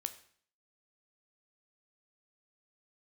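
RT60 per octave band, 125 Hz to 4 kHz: 0.60, 0.60, 0.55, 0.55, 0.55, 0.55 s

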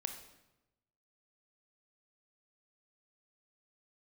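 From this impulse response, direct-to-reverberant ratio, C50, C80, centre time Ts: 6.0 dB, 8.0 dB, 10.5 dB, 18 ms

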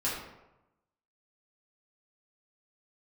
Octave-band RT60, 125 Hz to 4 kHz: 1.1, 0.95, 0.95, 0.95, 0.75, 0.55 s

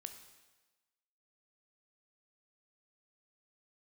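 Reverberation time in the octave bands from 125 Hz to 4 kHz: 1.1, 1.1, 1.2, 1.2, 1.2, 1.2 s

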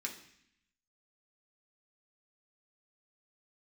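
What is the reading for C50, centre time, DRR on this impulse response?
9.5 dB, 18 ms, -1.0 dB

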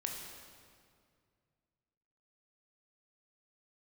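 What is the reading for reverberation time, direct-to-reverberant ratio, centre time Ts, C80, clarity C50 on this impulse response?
2.2 s, 0.5 dB, 72 ms, 4.0 dB, 3.0 dB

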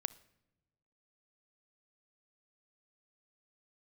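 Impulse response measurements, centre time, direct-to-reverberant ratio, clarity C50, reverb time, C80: 3 ms, 16.0 dB, 18.5 dB, not exponential, 21.5 dB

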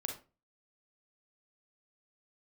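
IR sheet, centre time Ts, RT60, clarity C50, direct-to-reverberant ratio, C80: 20 ms, 0.30 s, 6.5 dB, 2.5 dB, 14.0 dB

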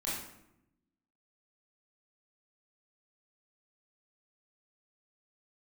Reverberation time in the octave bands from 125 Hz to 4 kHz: 1.2, 1.2, 0.90, 0.75, 0.70, 0.55 s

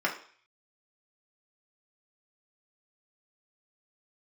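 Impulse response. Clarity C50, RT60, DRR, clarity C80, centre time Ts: 10.0 dB, 0.45 s, -2.5 dB, 14.0 dB, 18 ms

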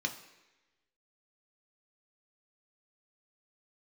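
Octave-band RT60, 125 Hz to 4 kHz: 0.85, 1.0, 1.1, 1.0, 1.2, 1.1 s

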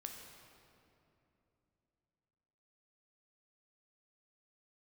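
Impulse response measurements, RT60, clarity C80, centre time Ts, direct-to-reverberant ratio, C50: 2.9 s, 4.5 dB, 73 ms, 2.0 dB, 3.5 dB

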